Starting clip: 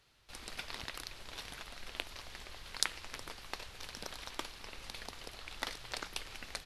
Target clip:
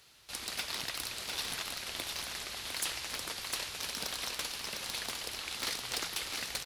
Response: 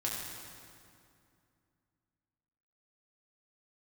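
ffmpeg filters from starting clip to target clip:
-filter_complex "[0:a]afftfilt=real='re*lt(hypot(re,im),0.0447)':imag='im*lt(hypot(re,im),0.0447)':win_size=1024:overlap=0.75,highpass=frequency=110:poles=1,highshelf=frequency=4000:gain=10,asoftclip=type=hard:threshold=-33dB,asplit=2[link_01][link_02];[link_02]aecho=0:1:276|704:0.133|0.562[link_03];[link_01][link_03]amix=inputs=2:normalize=0,volume=5dB"

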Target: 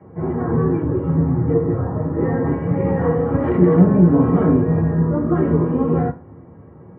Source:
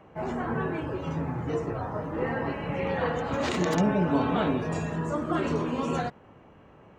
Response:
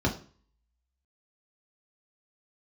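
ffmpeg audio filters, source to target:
-filter_complex "[0:a]lowpass=frequency=1900:width=0.5412,lowpass=frequency=1900:width=1.3066[link_01];[1:a]atrim=start_sample=2205,asetrate=57330,aresample=44100[link_02];[link_01][link_02]afir=irnorm=-1:irlink=0,volume=-6.5dB"

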